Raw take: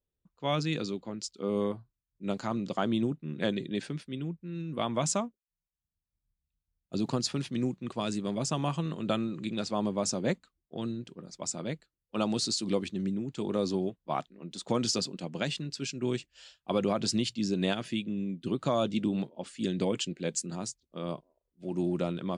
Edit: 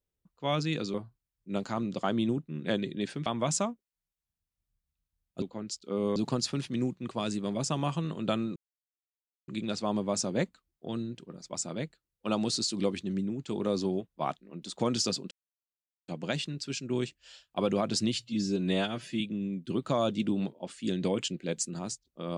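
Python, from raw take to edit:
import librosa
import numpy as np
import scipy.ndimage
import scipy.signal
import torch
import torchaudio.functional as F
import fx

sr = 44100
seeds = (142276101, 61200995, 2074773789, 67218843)

y = fx.edit(x, sr, fx.move(start_s=0.94, length_s=0.74, to_s=6.97),
    fx.cut(start_s=4.0, length_s=0.81),
    fx.insert_silence(at_s=9.37, length_s=0.92),
    fx.insert_silence(at_s=15.2, length_s=0.77),
    fx.stretch_span(start_s=17.26, length_s=0.71, factor=1.5), tone=tone)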